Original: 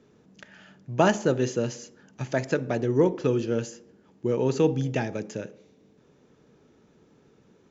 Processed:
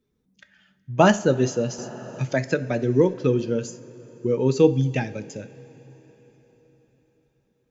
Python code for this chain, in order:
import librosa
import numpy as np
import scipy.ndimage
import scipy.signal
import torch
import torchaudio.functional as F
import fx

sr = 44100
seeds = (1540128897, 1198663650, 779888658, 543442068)

y = fx.bin_expand(x, sr, power=1.5)
y = fx.rev_double_slope(y, sr, seeds[0], early_s=0.31, late_s=4.6, knee_db=-18, drr_db=11.0)
y = fx.band_squash(y, sr, depth_pct=40, at=(1.78, 3.14))
y = F.gain(torch.from_numpy(y), 6.0).numpy()